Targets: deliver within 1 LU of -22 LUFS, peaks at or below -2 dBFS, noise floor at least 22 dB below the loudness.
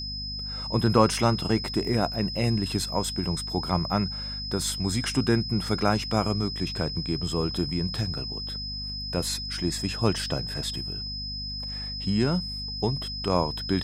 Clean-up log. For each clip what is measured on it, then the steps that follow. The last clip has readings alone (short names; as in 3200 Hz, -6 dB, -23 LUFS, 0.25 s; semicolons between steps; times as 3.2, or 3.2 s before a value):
hum 50 Hz; harmonics up to 250 Hz; hum level -36 dBFS; steady tone 5100 Hz; tone level -33 dBFS; loudness -27.0 LUFS; peak -5.0 dBFS; loudness target -22.0 LUFS
-> notches 50/100/150/200/250 Hz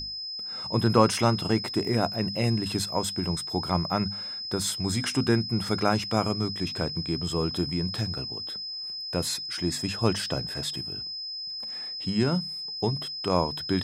hum none; steady tone 5100 Hz; tone level -33 dBFS
-> notch 5100 Hz, Q 30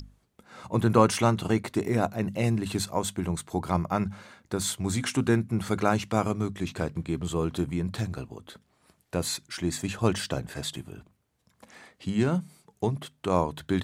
steady tone none; loudness -28.5 LUFS; peak -4.5 dBFS; loudness target -22.0 LUFS
-> gain +6.5 dB; limiter -2 dBFS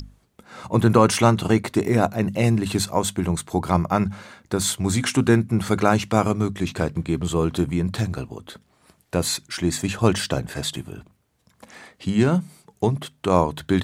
loudness -22.0 LUFS; peak -2.0 dBFS; noise floor -64 dBFS